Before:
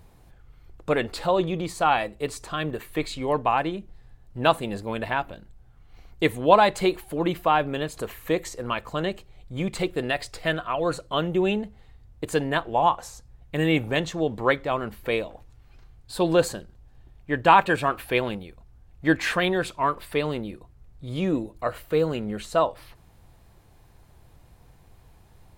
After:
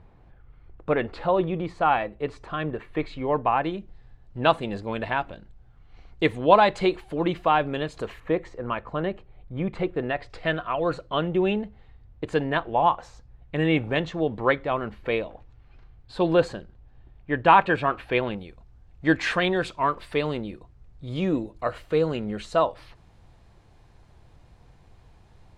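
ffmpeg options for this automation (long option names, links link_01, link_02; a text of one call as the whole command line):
ffmpeg -i in.wav -af "asetnsamples=nb_out_samples=441:pad=0,asendcmd='3.64 lowpass f 4600;8.2 lowpass f 1900;10.3 lowpass f 3300;18.38 lowpass f 6100',lowpass=2300" out.wav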